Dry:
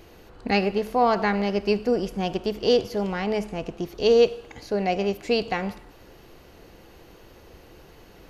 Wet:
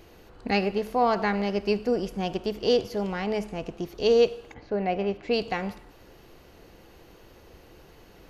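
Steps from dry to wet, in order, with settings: 4.53–5.32 LPF 2000 Hz -> 3400 Hz 12 dB/oct; gain -2.5 dB

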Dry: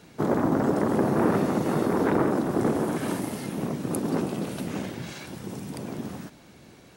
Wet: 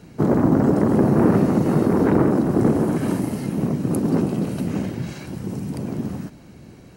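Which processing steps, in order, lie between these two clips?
low shelf 350 Hz +11.5 dB; notch 3500 Hz, Q 9.5

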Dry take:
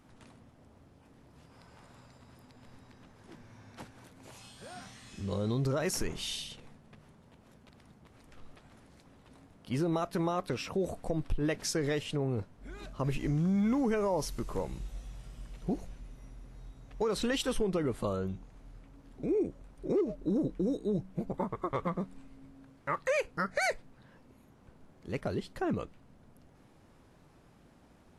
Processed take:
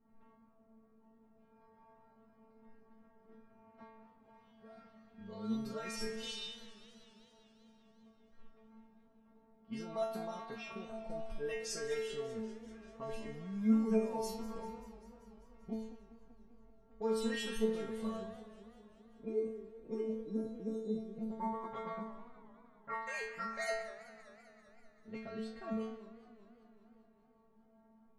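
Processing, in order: metallic resonator 220 Hz, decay 0.79 s, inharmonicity 0.002; low-pass opened by the level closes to 1000 Hz, open at -46.5 dBFS; warbling echo 0.195 s, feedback 71%, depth 190 cents, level -17 dB; gain +11 dB

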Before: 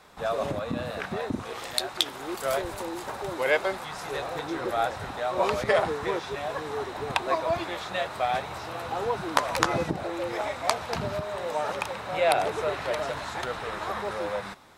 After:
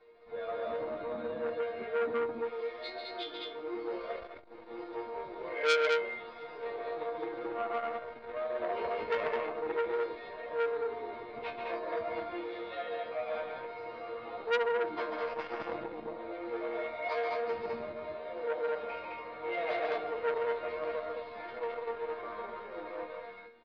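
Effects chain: high shelf 2600 Hz -5 dB; plain phase-vocoder stretch 1.6×; air absorption 110 m; resonator bank A#3 sus4, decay 0.32 s; small resonant body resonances 470/2200 Hz, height 17 dB, ringing for 55 ms; on a send: loudspeakers at several distances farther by 48 m -5 dB, 72 m -2 dB; on the sum: downsampling 11025 Hz; core saturation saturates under 2700 Hz; gain +8 dB

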